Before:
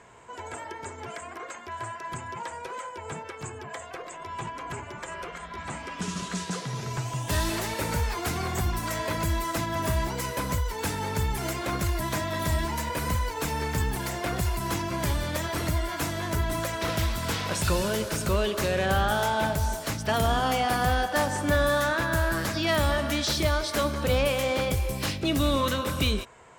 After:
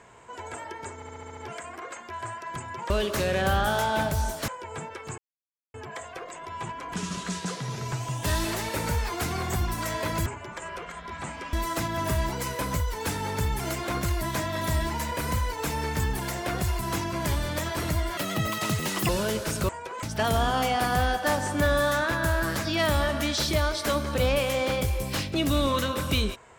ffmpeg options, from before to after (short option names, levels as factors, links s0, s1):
-filter_complex "[0:a]asplit=17[s0][s1][s2][s3][s4][s5][s6][s7][s8][s9][s10][s11][s12][s13][s14][s15][s16];[s0]atrim=end=1.022[s17];[s1]atrim=start=0.948:end=1.022[s18];[s2]atrim=start=0.948:end=1.022[s19];[s3]atrim=start=0.948:end=1.022[s20];[s4]atrim=start=0.948:end=1.022[s21];[s5]atrim=start=0.948:end=1.022[s22];[s6]atrim=start=0.948:end=2.482[s23];[s7]atrim=start=18.338:end=19.922[s24];[s8]atrim=start=2.818:end=3.52,asetpts=PTS-STARTPTS,afade=t=out:st=0.698:d=0.004:c=hsin,apad=pad_dur=0.56[s25];[s9]atrim=start=3.52:end=4.722,asetpts=PTS-STARTPTS,afade=t=in:d=0.004:c=hsin[s26];[s10]atrim=start=5.988:end=9.312[s27];[s11]atrim=start=4.718:end=5.992[s28];[s12]atrim=start=9.308:end=15.954[s29];[s13]atrim=start=15.95:end=17.74,asetpts=PTS-STARTPTS,asetrate=85995,aresample=44100[s30];[s14]atrim=start=17.736:end=18.342[s31];[s15]atrim=start=2.478:end=2.822[s32];[s16]atrim=start=19.918[s33];[s17][s18]acrossfade=d=0.004:c1=hsin:c2=hsin[s34];[s34][s19]acrossfade=d=0.004:c1=hsin:c2=hsin[s35];[s35][s20]acrossfade=d=0.004:c1=hsin:c2=hsin[s36];[s36][s21]acrossfade=d=0.004:c1=hsin:c2=hsin[s37];[s37][s22]acrossfade=d=0.004:c1=hsin:c2=hsin[s38];[s38][s23]acrossfade=d=0.004:c1=hsin:c2=hsin[s39];[s39][s24]acrossfade=d=0.004:c1=hsin:c2=hsin[s40];[s25][s26]concat=n=2:v=0:a=1[s41];[s40][s41]acrossfade=d=0.004:c1=hsin:c2=hsin[s42];[s42][s27]acrossfade=d=0.004:c1=hsin:c2=hsin[s43];[s43][s28]acrossfade=d=0.004:c1=hsin:c2=hsin[s44];[s44][s29]acrossfade=d=0.004:c1=hsin:c2=hsin[s45];[s45][s30]acrossfade=d=0.004:c1=hsin:c2=hsin[s46];[s46][s31]acrossfade=d=0.004:c1=hsin:c2=hsin[s47];[s47][s32]acrossfade=d=0.004:c1=hsin:c2=hsin[s48];[s48][s33]acrossfade=d=0.004:c1=hsin:c2=hsin"